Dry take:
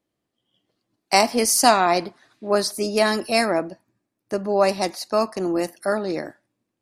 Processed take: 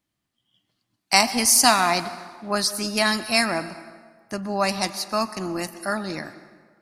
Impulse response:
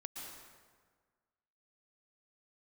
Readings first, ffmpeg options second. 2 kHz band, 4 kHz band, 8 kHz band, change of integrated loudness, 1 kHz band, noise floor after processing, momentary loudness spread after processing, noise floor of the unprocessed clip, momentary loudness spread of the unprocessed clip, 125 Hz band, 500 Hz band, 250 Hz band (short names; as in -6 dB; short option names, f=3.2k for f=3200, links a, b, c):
+2.0 dB, +3.0 dB, +3.5 dB, 0.0 dB, -2.0 dB, -80 dBFS, 19 LU, -80 dBFS, 14 LU, +0.5 dB, -7.0 dB, -2.0 dB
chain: -filter_complex "[0:a]equalizer=f=460:t=o:w=1.3:g=-14.5,asplit=2[a][b];[1:a]atrim=start_sample=2205[c];[b][c]afir=irnorm=-1:irlink=0,volume=-7.5dB[d];[a][d]amix=inputs=2:normalize=0,volume=1.5dB"